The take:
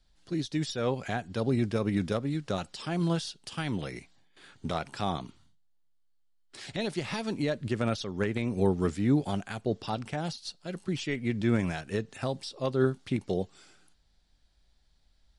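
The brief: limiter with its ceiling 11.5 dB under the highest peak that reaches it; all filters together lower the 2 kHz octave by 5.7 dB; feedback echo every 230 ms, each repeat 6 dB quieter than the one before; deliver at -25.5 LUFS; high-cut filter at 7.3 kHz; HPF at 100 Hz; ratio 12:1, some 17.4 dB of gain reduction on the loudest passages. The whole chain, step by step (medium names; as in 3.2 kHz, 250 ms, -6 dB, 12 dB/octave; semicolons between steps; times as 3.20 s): high-pass 100 Hz; low-pass 7.3 kHz; peaking EQ 2 kHz -7.5 dB; compression 12:1, threshold -38 dBFS; peak limiter -36 dBFS; feedback delay 230 ms, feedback 50%, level -6 dB; trim +20.5 dB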